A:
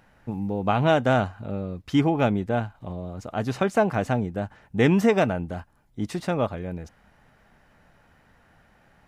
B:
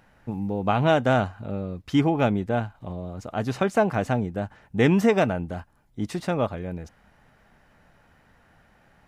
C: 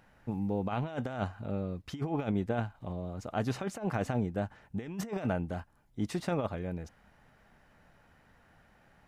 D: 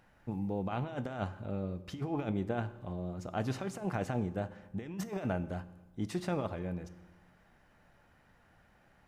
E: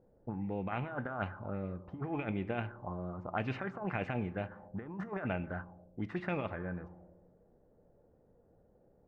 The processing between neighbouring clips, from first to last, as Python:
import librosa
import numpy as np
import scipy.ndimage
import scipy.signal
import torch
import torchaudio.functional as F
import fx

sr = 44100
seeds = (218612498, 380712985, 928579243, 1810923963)

y1 = x
y2 = fx.over_compress(y1, sr, threshold_db=-24.0, ratio=-0.5)
y2 = y2 * librosa.db_to_amplitude(-7.0)
y3 = fx.rev_fdn(y2, sr, rt60_s=1.2, lf_ratio=1.05, hf_ratio=0.8, size_ms=17.0, drr_db=12.5)
y3 = y3 * librosa.db_to_amplitude(-2.5)
y4 = fx.envelope_lowpass(y3, sr, base_hz=450.0, top_hz=2500.0, q=4.0, full_db=-30.5, direction='up')
y4 = y4 * librosa.db_to_amplitude(-2.5)